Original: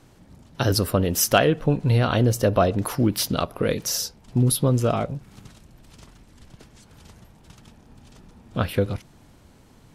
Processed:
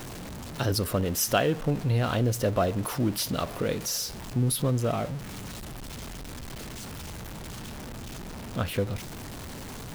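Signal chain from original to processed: jump at every zero crossing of -27 dBFS; trim -7 dB

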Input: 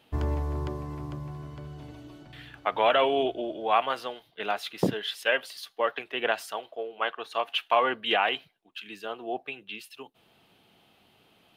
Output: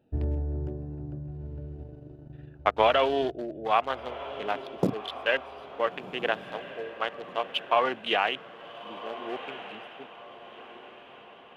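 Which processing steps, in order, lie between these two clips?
local Wiener filter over 41 samples; echo that smears into a reverb 1413 ms, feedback 44%, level -13 dB; 1.75–2.87 s: transient shaper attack +5 dB, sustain -8 dB

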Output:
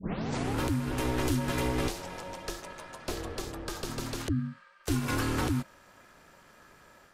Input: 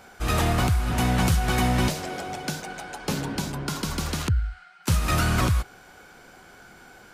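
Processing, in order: tape start-up on the opening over 0.58 s; level rider gain up to 4 dB; ring modulator 190 Hz; trim -8.5 dB

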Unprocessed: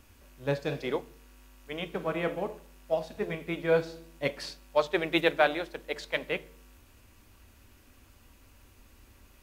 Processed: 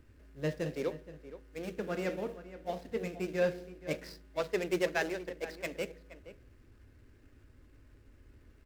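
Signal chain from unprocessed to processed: median filter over 15 samples; high-order bell 810 Hz -8.5 dB 1.2 oct; in parallel at -4 dB: saturation -28.5 dBFS, distortion -9 dB; on the sum: speed mistake 44.1 kHz file played as 48 kHz; echo from a far wall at 81 m, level -14 dB; trim -5 dB

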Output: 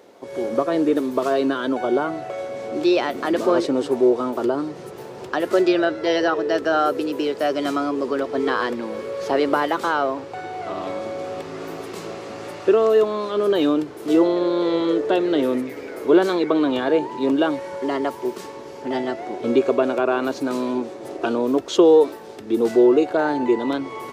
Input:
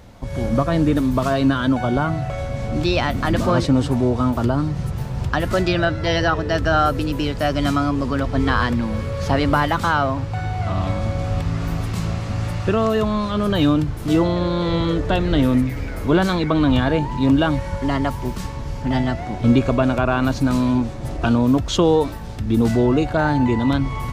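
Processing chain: resonant high-pass 390 Hz, resonance Q 3.9; trim -4 dB

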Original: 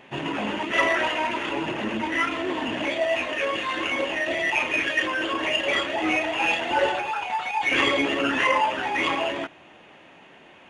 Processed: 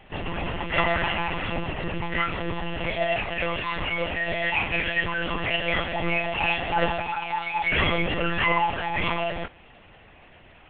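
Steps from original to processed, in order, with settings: 1.01–1.60 s: comb 5.7 ms, depth 51%; monotone LPC vocoder at 8 kHz 170 Hz; trim -1 dB

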